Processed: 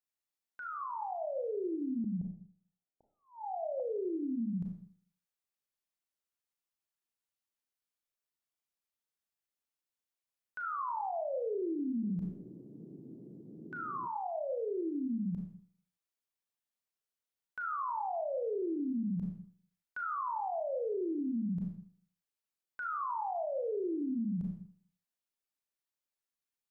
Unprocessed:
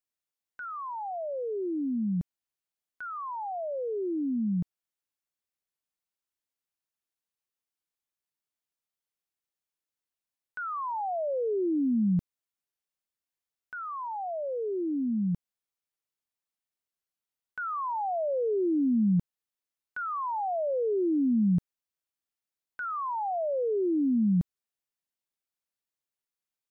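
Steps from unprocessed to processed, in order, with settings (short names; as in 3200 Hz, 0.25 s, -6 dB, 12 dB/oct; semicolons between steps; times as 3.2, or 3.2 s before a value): Schroeder reverb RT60 0.54 s, combs from 27 ms, DRR 3 dB; 12.02–14.06 band noise 130–370 Hz -45 dBFS; notches 50/100/150/200/250/300 Hz; limiter -25 dBFS, peak gain reduction 10.5 dB; 2.04–3.8 steep low-pass 850 Hz 96 dB/oct; gain -4.5 dB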